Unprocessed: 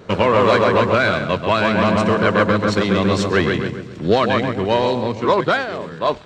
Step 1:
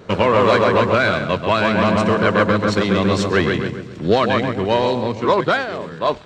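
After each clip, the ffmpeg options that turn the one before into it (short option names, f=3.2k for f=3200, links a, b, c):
-af anull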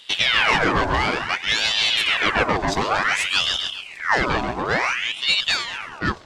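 -af "aexciter=amount=2.7:drive=2.6:freq=4.8k,aeval=exprs='val(0)*sin(2*PI*1900*n/s+1900*0.75/0.56*sin(2*PI*0.56*n/s))':c=same,volume=-1.5dB"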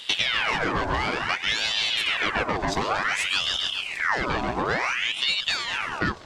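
-af "acompressor=threshold=-28dB:ratio=6,volume=6dB"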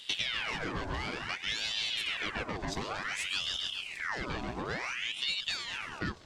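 -af "equalizer=f=920:w=0.53:g=-6.5,volume=-7dB"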